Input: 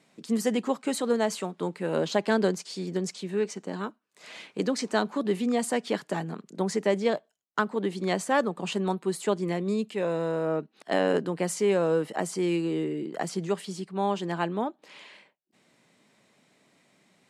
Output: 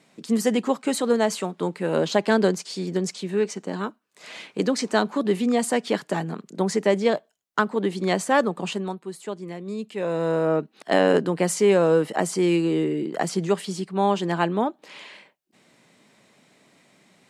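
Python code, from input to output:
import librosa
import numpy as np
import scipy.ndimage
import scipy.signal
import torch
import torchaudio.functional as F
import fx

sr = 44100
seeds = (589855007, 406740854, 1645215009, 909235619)

y = fx.gain(x, sr, db=fx.line((8.61, 4.5), (9.03, -6.0), (9.6, -6.0), (10.32, 6.0)))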